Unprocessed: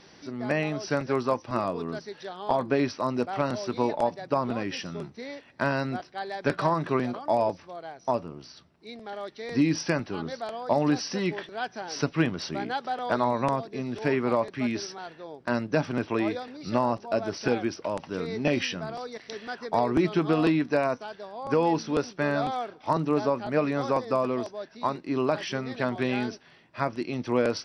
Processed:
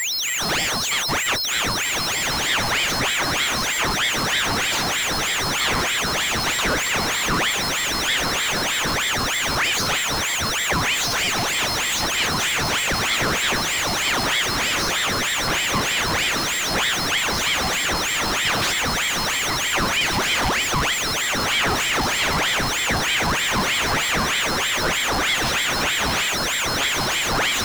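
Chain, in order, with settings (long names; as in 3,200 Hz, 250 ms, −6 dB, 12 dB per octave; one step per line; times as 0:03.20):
high-pass filter 530 Hz 6 dB per octave
on a send: feedback delay with all-pass diffusion 1,749 ms, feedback 40%, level −3 dB
on the sum: steady tone 4,700 Hz −35 dBFS
power curve on the samples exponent 0.35
ring modulator whose carrier an LFO sweeps 1,600 Hz, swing 75%, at 3.2 Hz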